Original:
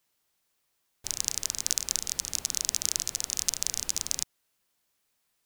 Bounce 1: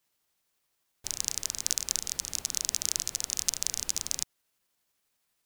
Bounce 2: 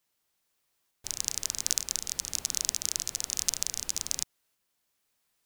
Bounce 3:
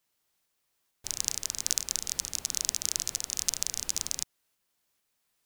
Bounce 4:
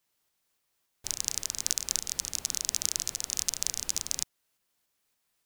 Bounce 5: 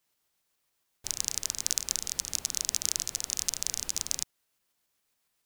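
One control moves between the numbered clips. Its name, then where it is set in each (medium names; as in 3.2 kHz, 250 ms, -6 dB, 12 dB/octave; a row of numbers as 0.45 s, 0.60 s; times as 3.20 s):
tremolo, rate: 12 Hz, 1.1 Hz, 2.2 Hz, 3.5 Hz, 7.2 Hz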